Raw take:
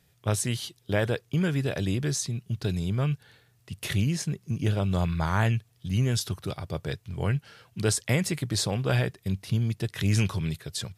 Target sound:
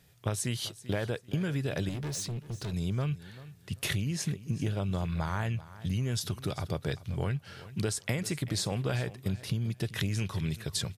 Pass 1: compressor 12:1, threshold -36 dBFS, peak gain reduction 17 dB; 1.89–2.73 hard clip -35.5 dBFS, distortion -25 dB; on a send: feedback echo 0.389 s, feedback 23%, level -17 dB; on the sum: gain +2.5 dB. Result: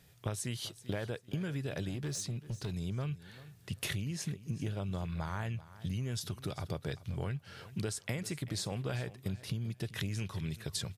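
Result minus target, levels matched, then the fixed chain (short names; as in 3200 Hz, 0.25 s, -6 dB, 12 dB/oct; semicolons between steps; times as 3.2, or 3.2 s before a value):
compressor: peak gain reduction +5.5 dB
compressor 12:1, threshold -30 dBFS, peak gain reduction 11.5 dB; 1.89–2.73 hard clip -35.5 dBFS, distortion -17 dB; on a send: feedback echo 0.389 s, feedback 23%, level -17 dB; on the sum: gain +2.5 dB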